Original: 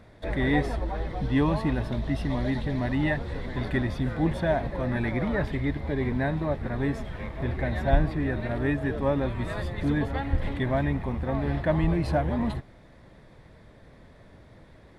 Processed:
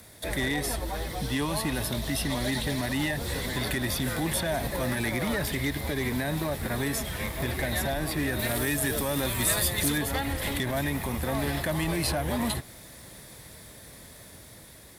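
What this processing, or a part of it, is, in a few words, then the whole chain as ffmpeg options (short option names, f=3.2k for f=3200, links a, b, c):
FM broadcast chain: -filter_complex "[0:a]highpass=44,dynaudnorm=f=830:g=5:m=4dB,acrossover=split=270|740|4300[a][b][c][d];[a]acompressor=threshold=-28dB:ratio=4[e];[b]acompressor=threshold=-28dB:ratio=4[f];[c]acompressor=threshold=-31dB:ratio=4[g];[d]acompressor=threshold=-55dB:ratio=4[h];[e][f][g][h]amix=inputs=4:normalize=0,aemphasis=mode=production:type=75fm,alimiter=limit=-19dB:level=0:latency=1:release=50,asoftclip=type=hard:threshold=-21.5dB,lowpass=f=15k:w=0.5412,lowpass=f=15k:w=1.3066,aemphasis=mode=production:type=75fm,asettb=1/sr,asplit=3[i][j][k];[i]atrim=end=8.394[l];[j]atrim=start=8.39:end=9.98,asetpts=PTS-STARTPTS,afade=t=in:d=0.004:c=qsin,afade=t=out:st=1.586:d=0.004:c=qsin,highshelf=f=4.5k:g=8[m];[k]atrim=start=9.976[n];[l][m]acrossfade=d=0.004:c1=hsin:c2=qsin[o];[o][n]acrossfade=d=0.004:c1=qsin:c2=hsin"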